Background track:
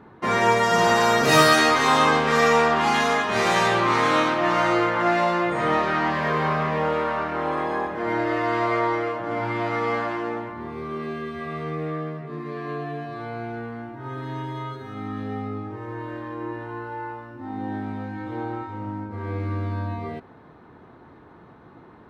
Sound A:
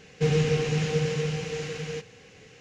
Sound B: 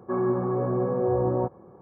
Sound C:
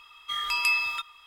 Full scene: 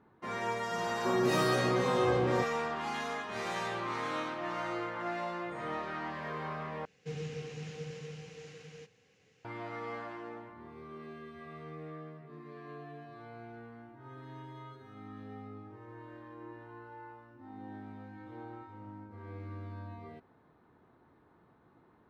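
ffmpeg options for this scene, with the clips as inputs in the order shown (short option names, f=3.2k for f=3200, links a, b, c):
-filter_complex "[0:a]volume=-16dB[a];[2:a]equalizer=f=75:w=1.5:g=-3.5[b];[1:a]highpass=79[c];[a]asplit=2[d][e];[d]atrim=end=6.854[f];[c]atrim=end=2.6,asetpts=PTS-STARTPTS,volume=-16.5dB[g];[e]atrim=start=9.446[h];[b]atrim=end=1.81,asetpts=PTS-STARTPTS,volume=-5dB,afade=t=in:d=0.004:c=hsin,afade=t=out:st=1.806:d=0.004:c=hsin,adelay=960[i];[f][g]acrossfade=d=0.004:c1=hsin:c2=hsin[j];[j][h]acrossfade=d=0.004:c1=hsin:c2=hsin[k];[k][i]amix=inputs=2:normalize=0"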